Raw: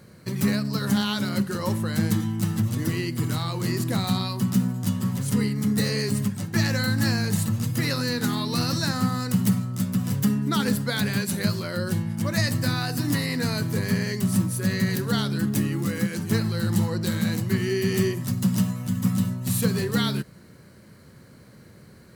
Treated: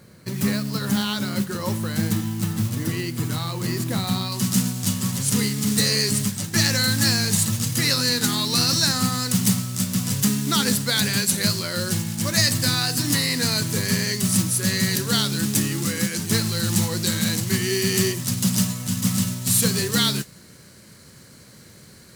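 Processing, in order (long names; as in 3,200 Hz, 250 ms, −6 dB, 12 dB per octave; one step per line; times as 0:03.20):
noise that follows the level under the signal 17 dB
parametric band 6,900 Hz +2.5 dB 2.6 octaves, from 0:04.32 +12 dB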